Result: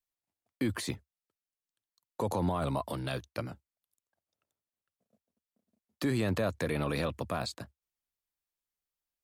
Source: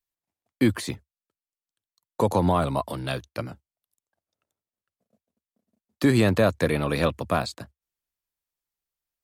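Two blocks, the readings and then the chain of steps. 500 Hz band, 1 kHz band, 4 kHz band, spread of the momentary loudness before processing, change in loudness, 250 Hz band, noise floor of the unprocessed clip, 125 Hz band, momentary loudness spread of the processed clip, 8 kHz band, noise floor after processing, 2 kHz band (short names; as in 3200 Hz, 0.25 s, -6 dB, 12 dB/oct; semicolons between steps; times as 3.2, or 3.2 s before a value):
-9.5 dB, -9.0 dB, -7.0 dB, 15 LU, -9.5 dB, -9.5 dB, under -85 dBFS, -8.0 dB, 13 LU, -5.5 dB, under -85 dBFS, -8.5 dB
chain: limiter -17.5 dBFS, peak gain reduction 7.5 dB; gain -4 dB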